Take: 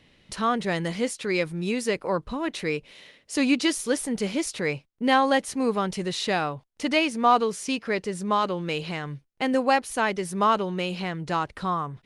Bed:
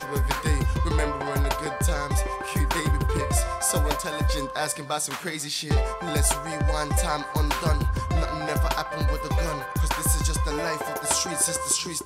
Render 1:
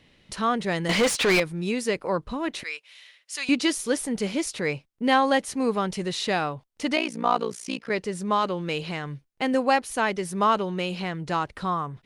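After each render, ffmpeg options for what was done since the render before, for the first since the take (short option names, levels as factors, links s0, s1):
-filter_complex "[0:a]asettb=1/sr,asplit=3[s0][s1][s2];[s0]atrim=end=0.894[s3];[s1]atrim=start=0.89:end=1.4,asetpts=PTS-STARTPTS,afade=t=in:d=0.004:c=qsin,afade=t=out:st=0.506:d=0.004:c=qsin,asplit=2[s4][s5];[s5]highpass=f=720:p=1,volume=25.1,asoftclip=type=tanh:threshold=0.224[s6];[s4][s6]amix=inputs=2:normalize=0,lowpass=f=3900:p=1,volume=0.501[s7];[s2]atrim=start=1.396[s8];[s3][s7]acrossfade=d=0.004:c1=hsin:c2=qsin[s9];[s9][s8]acrossfade=d=0.004:c1=qsin:c2=hsin,asettb=1/sr,asplit=3[s10][s11][s12];[s10]atrim=end=2.634[s13];[s11]atrim=start=2.63:end=3.49,asetpts=PTS-STARTPTS,afade=t=in:d=0.004:c=qsin,afade=t=out:st=0.856:d=0.004:c=qsin,highpass=1400[s14];[s12]atrim=start=3.486[s15];[s13][s14]acrossfade=d=0.004:c1=hsin:c2=qsin[s16];[s16][s15]acrossfade=d=0.004:c1=qsin:c2=hsin,asplit=3[s17][s18][s19];[s17]afade=t=out:st=6.95:d=0.02[s20];[s18]tremolo=f=59:d=0.947,afade=t=in:st=6.95:d=0.02,afade=t=out:st=7.89:d=0.02[s21];[s19]afade=t=in:st=7.89:d=0.02[s22];[s20][s21][s22]amix=inputs=3:normalize=0"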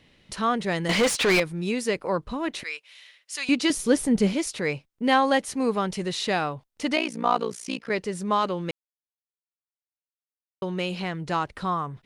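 -filter_complex "[0:a]asettb=1/sr,asplit=3[s0][s1][s2];[s0]atrim=end=3.704[s3];[s1]atrim=start=3.7:end=4.34,asetpts=PTS-STARTPTS,afade=t=in:d=0.004:c=qsin,afade=t=out:st=0.636:d=0.004:c=qsin,lowshelf=f=340:g=11[s4];[s2]atrim=start=4.336[s5];[s3][s4]acrossfade=d=0.004:c1=hsin:c2=qsin[s6];[s6][s5]acrossfade=d=0.004:c1=qsin:c2=hsin,asplit=3[s7][s8][s9];[s7]atrim=end=8.71,asetpts=PTS-STARTPTS,afade=t=out:st=8.706:d=0.004:c=hsin[s10];[s8]atrim=start=8.71:end=10.62,asetpts=PTS-STARTPTS,volume=0[s11];[s9]atrim=start=10.62,asetpts=PTS-STARTPTS,afade=t=in:d=0.004:c=hsin[s12];[s10][s11][s12]concat=n=3:v=0:a=1"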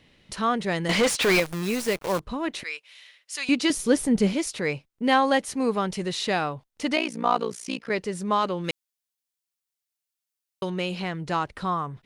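-filter_complex "[0:a]asettb=1/sr,asplit=3[s0][s1][s2];[s0]atrim=end=1.224[s3];[s1]atrim=start=1.22:end=2.2,asetpts=PTS-STARTPTS,afade=t=in:d=0.004:c=qsin,afade=t=out:st=0.976:d=0.004:c=qsin,acrusher=bits=6:dc=4:mix=0:aa=0.000001[s4];[s2]atrim=start=2.196[s5];[s3][s4]acrossfade=d=0.004:c1=hsin:c2=qsin[s6];[s6][s5]acrossfade=d=0.004:c1=qsin:c2=hsin,asettb=1/sr,asplit=3[s7][s8][s9];[s7]atrim=end=8.644[s10];[s8]atrim=start=8.64:end=10.7,asetpts=PTS-STARTPTS,afade=t=in:d=0.004:c=qsin,afade=t=out:st=2.056:d=0.004:c=qsin,highshelf=f=2100:g=10.5[s11];[s9]atrim=start=10.696[s12];[s10][s11]acrossfade=d=0.004:c1=hsin:c2=qsin[s13];[s13][s12]acrossfade=d=0.004:c1=qsin:c2=hsin"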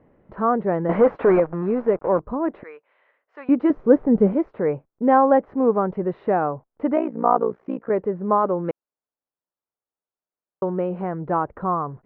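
-af "lowpass=f=1400:w=0.5412,lowpass=f=1400:w=1.3066,equalizer=f=500:t=o:w=2.2:g=7.5"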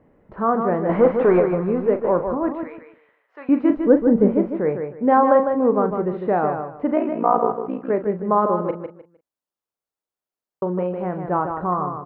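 -filter_complex "[0:a]asplit=2[s0][s1];[s1]adelay=39,volume=0.316[s2];[s0][s2]amix=inputs=2:normalize=0,aecho=1:1:153|306|459:0.473|0.114|0.0273"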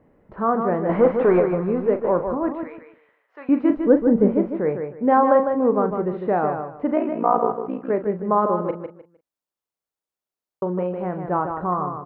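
-af "volume=0.891"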